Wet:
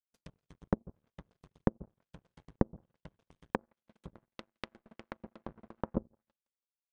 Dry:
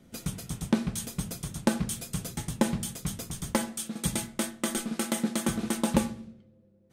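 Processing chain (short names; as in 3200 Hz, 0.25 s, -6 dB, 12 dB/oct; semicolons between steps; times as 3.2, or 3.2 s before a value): in parallel at -10.5 dB: wrapped overs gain 23 dB; on the sum: comb 1.9 ms, depth 34%; on a send: thinning echo 0.165 s, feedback 71%, high-pass 350 Hz, level -13 dB; on the sum: treble ducked by the level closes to 690 Hz, closed at -25 dBFS; power-law curve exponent 3; treble ducked by the level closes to 450 Hz, closed at -38.5 dBFS; gain +4 dB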